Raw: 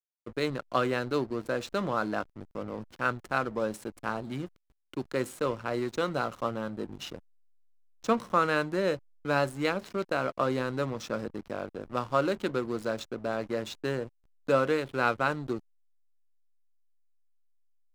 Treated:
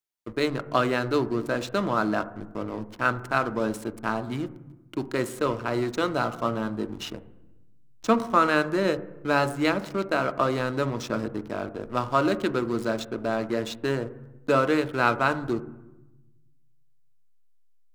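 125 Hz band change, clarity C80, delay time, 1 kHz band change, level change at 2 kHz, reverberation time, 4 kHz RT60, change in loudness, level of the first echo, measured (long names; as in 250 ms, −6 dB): +5.0 dB, 18.0 dB, no echo audible, +5.0 dB, +4.5 dB, 1.0 s, 0.85 s, +4.5 dB, no echo audible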